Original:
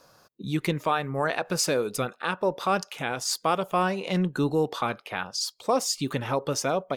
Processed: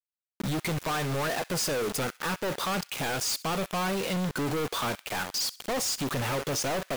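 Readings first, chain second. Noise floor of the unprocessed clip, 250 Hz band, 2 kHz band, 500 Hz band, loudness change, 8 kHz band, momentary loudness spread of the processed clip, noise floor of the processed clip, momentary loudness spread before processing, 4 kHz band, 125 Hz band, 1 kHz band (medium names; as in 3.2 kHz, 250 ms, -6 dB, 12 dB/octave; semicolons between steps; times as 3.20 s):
-60 dBFS, -3.0 dB, -1.0 dB, -4.5 dB, -2.5 dB, 0.0 dB, 3 LU, under -85 dBFS, 5 LU, +0.5 dB, -1.5 dB, -4.5 dB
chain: companded quantiser 2-bit; feedback echo behind a high-pass 65 ms, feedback 36%, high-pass 1.7 kHz, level -18.5 dB; trim -3 dB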